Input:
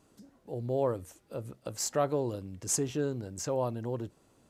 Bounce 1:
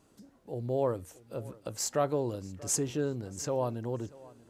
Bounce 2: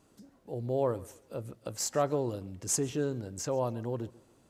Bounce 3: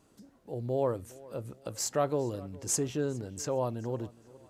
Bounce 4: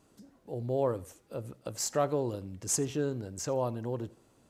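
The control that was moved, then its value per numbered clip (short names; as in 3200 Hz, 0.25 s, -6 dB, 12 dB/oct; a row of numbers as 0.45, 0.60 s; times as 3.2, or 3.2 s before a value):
tape echo, time: 634, 138, 411, 84 ms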